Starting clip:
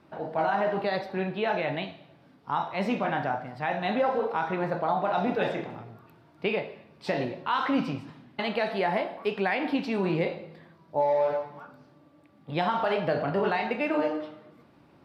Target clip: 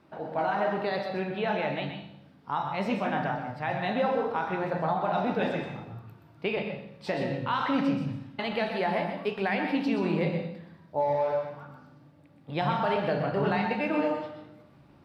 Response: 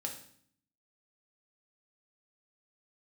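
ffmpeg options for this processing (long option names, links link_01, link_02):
-filter_complex "[0:a]asplit=2[link_01][link_02];[link_02]asubboost=boost=6:cutoff=140[link_03];[1:a]atrim=start_sample=2205,adelay=125[link_04];[link_03][link_04]afir=irnorm=-1:irlink=0,volume=-5dB[link_05];[link_01][link_05]amix=inputs=2:normalize=0,volume=-2dB"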